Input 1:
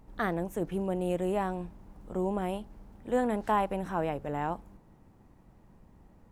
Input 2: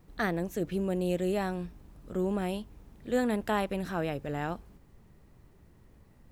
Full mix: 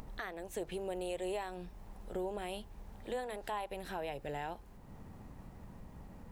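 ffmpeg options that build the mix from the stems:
ffmpeg -i stem1.wav -i stem2.wav -filter_complex "[0:a]equalizer=frequency=340:width_type=o:width=0.31:gain=-7.5,acompressor=mode=upward:threshold=-36dB:ratio=2.5,volume=-4dB[link_01];[1:a]acompressor=threshold=-31dB:ratio=6,volume=-1,volume=-0.5dB[link_02];[link_01][link_02]amix=inputs=2:normalize=0,alimiter=level_in=4.5dB:limit=-24dB:level=0:latency=1:release=394,volume=-4.5dB" out.wav

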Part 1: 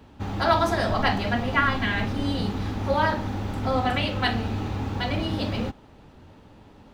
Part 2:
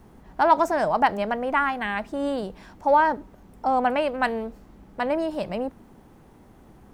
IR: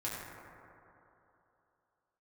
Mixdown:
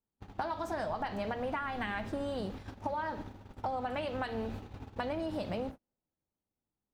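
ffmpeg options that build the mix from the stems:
-filter_complex "[0:a]acompressor=threshold=-36dB:ratio=2,volume=-6dB[link_01];[1:a]acompressor=threshold=-27dB:ratio=5,volume=-1,volume=-2dB,asplit=2[link_02][link_03];[link_03]volume=-21.5dB[link_04];[2:a]atrim=start_sample=2205[link_05];[link_04][link_05]afir=irnorm=-1:irlink=0[link_06];[link_01][link_02][link_06]amix=inputs=3:normalize=0,agate=range=-42dB:threshold=-38dB:ratio=16:detection=peak,acompressor=threshold=-32dB:ratio=6"

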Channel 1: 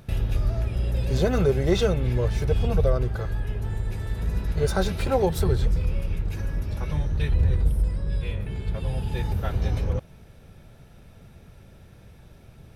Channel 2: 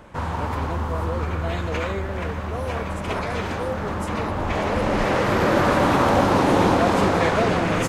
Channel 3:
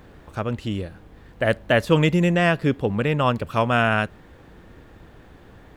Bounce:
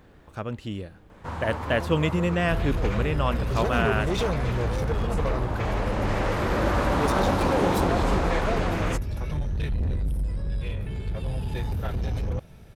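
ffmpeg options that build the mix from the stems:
ffmpeg -i stem1.wav -i stem2.wav -i stem3.wav -filter_complex "[0:a]asoftclip=type=tanh:threshold=-22.5dB,adelay=2400,volume=0.5dB[link_01];[1:a]adelay=1100,volume=-6.5dB[link_02];[2:a]volume=-6dB[link_03];[link_01][link_02][link_03]amix=inputs=3:normalize=0" out.wav

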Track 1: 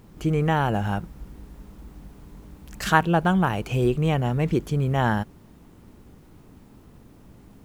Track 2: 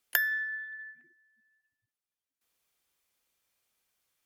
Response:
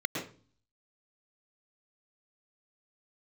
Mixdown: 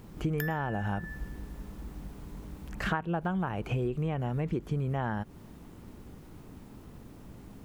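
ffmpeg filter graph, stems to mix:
-filter_complex "[0:a]acrossover=split=2600[link_01][link_02];[link_02]acompressor=threshold=-52dB:ratio=4:attack=1:release=60[link_03];[link_01][link_03]amix=inputs=2:normalize=0,volume=1dB[link_04];[1:a]adelay=250,volume=0.5dB,asplit=2[link_05][link_06];[link_06]volume=-14.5dB[link_07];[2:a]atrim=start_sample=2205[link_08];[link_07][link_08]afir=irnorm=-1:irlink=0[link_09];[link_04][link_05][link_09]amix=inputs=3:normalize=0,acompressor=threshold=-27dB:ratio=12"

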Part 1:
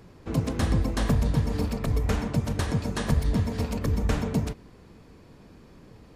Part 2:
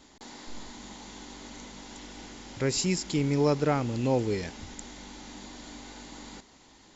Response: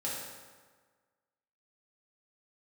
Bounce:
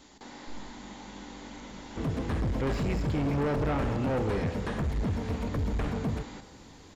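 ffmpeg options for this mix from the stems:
-filter_complex "[0:a]adelay=1700,volume=-2.5dB[link_01];[1:a]volume=-0.5dB,asplit=2[link_02][link_03];[link_03]volume=-10dB[link_04];[2:a]atrim=start_sample=2205[link_05];[link_04][link_05]afir=irnorm=-1:irlink=0[link_06];[link_01][link_02][link_06]amix=inputs=3:normalize=0,volume=25.5dB,asoftclip=hard,volume=-25.5dB,acrossover=split=3000[link_07][link_08];[link_08]acompressor=threshold=-55dB:ratio=4:attack=1:release=60[link_09];[link_07][link_09]amix=inputs=2:normalize=0"

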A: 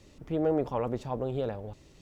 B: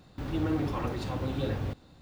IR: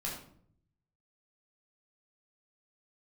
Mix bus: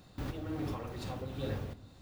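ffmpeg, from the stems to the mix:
-filter_complex "[0:a]acompressor=threshold=-35dB:ratio=2.5,aeval=exprs='val(0)*pow(10,-29*if(lt(mod(-2.4*n/s,1),2*abs(-2.4)/1000),1-mod(-2.4*n/s,1)/(2*abs(-2.4)/1000),(mod(-2.4*n/s,1)-2*abs(-2.4)/1000)/(1-2*abs(-2.4)/1000))/20)':channel_layout=same,volume=-7dB,asplit=2[link_01][link_02];[1:a]volume=-2.5dB,asplit=2[link_03][link_04];[link_04]volume=-18dB[link_05];[link_02]apad=whole_len=88891[link_06];[link_03][link_06]sidechaincompress=threshold=-57dB:ratio=4:attack=46:release=359[link_07];[2:a]atrim=start_sample=2205[link_08];[link_05][link_08]afir=irnorm=-1:irlink=0[link_09];[link_01][link_07][link_09]amix=inputs=3:normalize=0,highshelf=frequency=6400:gain=7.5"

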